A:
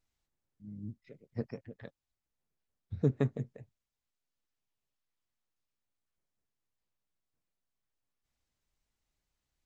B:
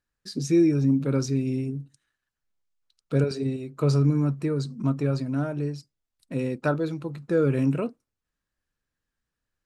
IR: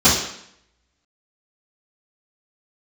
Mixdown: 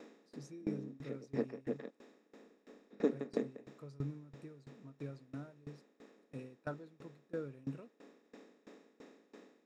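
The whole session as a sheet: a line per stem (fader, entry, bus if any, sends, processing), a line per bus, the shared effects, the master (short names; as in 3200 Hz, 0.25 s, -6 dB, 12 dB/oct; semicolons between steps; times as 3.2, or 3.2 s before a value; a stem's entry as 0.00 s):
+2.0 dB, 0.00 s, no send, per-bin compression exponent 0.4; elliptic high-pass 210 Hz, stop band 40 dB
-15.5 dB, 0.00 s, no send, dry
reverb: off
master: dB-ramp tremolo decaying 3 Hz, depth 23 dB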